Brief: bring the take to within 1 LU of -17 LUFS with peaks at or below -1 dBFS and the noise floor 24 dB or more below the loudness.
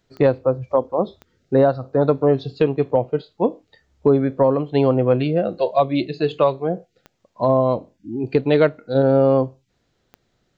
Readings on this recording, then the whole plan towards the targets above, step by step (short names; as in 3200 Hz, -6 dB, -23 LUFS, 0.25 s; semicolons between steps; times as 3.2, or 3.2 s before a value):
clicks 4; loudness -19.5 LUFS; peak -6.0 dBFS; loudness target -17.0 LUFS
-> de-click; gain +2.5 dB